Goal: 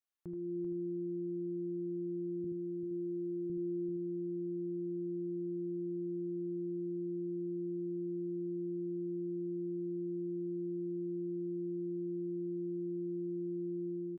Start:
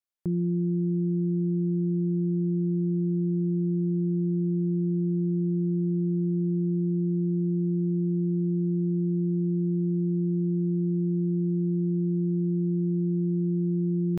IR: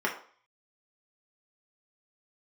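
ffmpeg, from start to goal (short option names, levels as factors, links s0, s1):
-filter_complex "[0:a]asettb=1/sr,asplit=3[s0][s1][s2];[s0]atrim=end=2.444[s3];[s1]atrim=start=2.44:end=3.5,asetpts=PTS-STARTPTS,afade=t=in:d=0.004:c=qsin,afade=t=out:st=1.056:d=0.004:c=qsin,equalizer=f=140:t=o:w=2.8:g=-7.5[s4];[s2]atrim=start=3.496[s5];[s3][s4]acrossfade=d=0.004:c1=hsin:c2=qsin[s6];[s6][s5]acrossfade=d=0.004:c1=qsin:c2=hsin,aecho=1:1:78:0.398,asplit=2[s7][s8];[1:a]atrim=start_sample=2205,afade=t=out:st=0.16:d=0.01,atrim=end_sample=7497,lowshelf=f=110:g=-6[s9];[s8][s9]afir=irnorm=-1:irlink=0,volume=0.237[s10];[s7][s10]amix=inputs=2:normalize=0,alimiter=level_in=2.37:limit=0.0631:level=0:latency=1:release=64,volume=0.422,dynaudnorm=f=190:g=5:m=2.11,asplit=2[s11][s12];[s12]aecho=0:1:389:0.447[s13];[s11][s13]amix=inputs=2:normalize=0,volume=0.473"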